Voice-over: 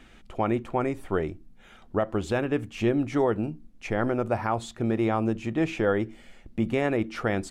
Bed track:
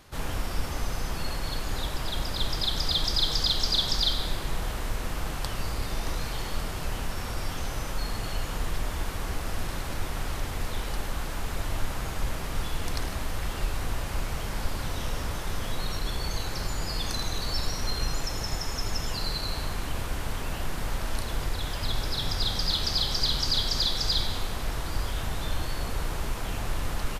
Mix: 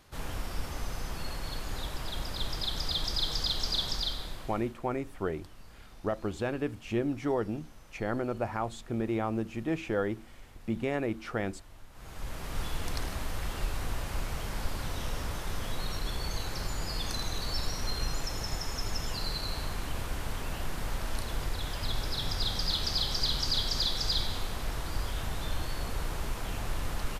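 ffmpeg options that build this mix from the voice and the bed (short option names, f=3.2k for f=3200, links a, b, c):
-filter_complex "[0:a]adelay=4100,volume=-6dB[a];[1:a]volume=13dB,afade=t=out:st=3.83:d=0.94:silence=0.149624,afade=t=in:st=11.92:d=0.71:silence=0.11885[b];[a][b]amix=inputs=2:normalize=0"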